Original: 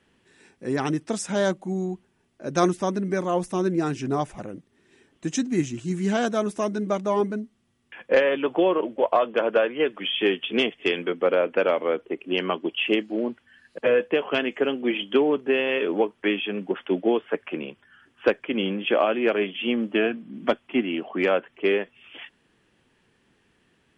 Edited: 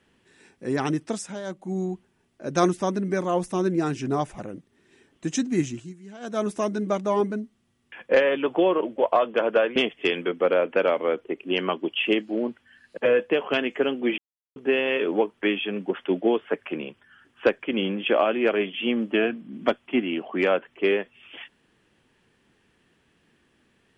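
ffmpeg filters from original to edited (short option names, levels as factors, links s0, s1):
-filter_complex "[0:a]asplit=8[s0][s1][s2][s3][s4][s5][s6][s7];[s0]atrim=end=1.41,asetpts=PTS-STARTPTS,afade=t=out:st=1.05:d=0.36:silence=0.211349[s8];[s1]atrim=start=1.41:end=1.43,asetpts=PTS-STARTPTS,volume=0.211[s9];[s2]atrim=start=1.43:end=5.94,asetpts=PTS-STARTPTS,afade=t=in:d=0.36:silence=0.211349,afade=t=out:st=4.27:d=0.24:silence=0.105925[s10];[s3]atrim=start=5.94:end=6.2,asetpts=PTS-STARTPTS,volume=0.106[s11];[s4]atrim=start=6.2:end=9.762,asetpts=PTS-STARTPTS,afade=t=in:d=0.24:silence=0.105925[s12];[s5]atrim=start=10.568:end=14.99,asetpts=PTS-STARTPTS,afade=t=out:st=4.418:d=0.004:c=hsin[s13];[s6]atrim=start=14.99:end=15.37,asetpts=PTS-STARTPTS,volume=0[s14];[s7]atrim=start=15.37,asetpts=PTS-STARTPTS,afade=t=in:d=0.004:c=hsin[s15];[s8][s9][s10][s11][s12]concat=n=5:v=0:a=1[s16];[s13][s14][s15]concat=n=3:v=0:a=1[s17];[s16][s17]acrossfade=d=0.004:c1=hsin:c2=hsin"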